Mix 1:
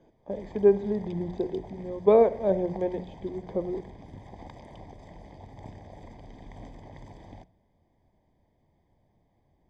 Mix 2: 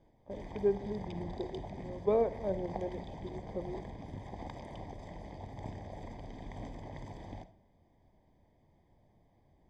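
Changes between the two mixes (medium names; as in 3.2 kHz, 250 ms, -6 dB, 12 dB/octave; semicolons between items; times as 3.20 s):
speech -10.0 dB; background: send +10.0 dB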